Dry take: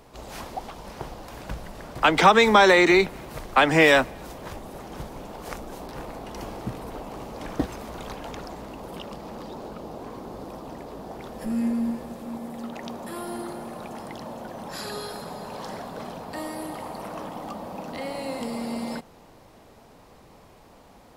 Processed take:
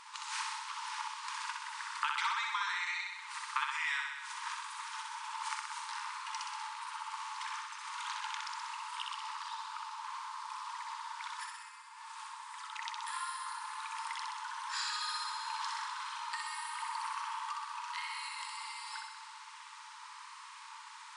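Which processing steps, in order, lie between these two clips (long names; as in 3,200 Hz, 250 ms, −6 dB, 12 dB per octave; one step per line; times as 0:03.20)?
downward compressor 8 to 1, threshold −38 dBFS, peak gain reduction 26.5 dB
on a send: flutter between parallel walls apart 10.8 metres, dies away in 1.1 s
on the sum: brick-wall band-pass 860–10,000 Hz
level +5.5 dB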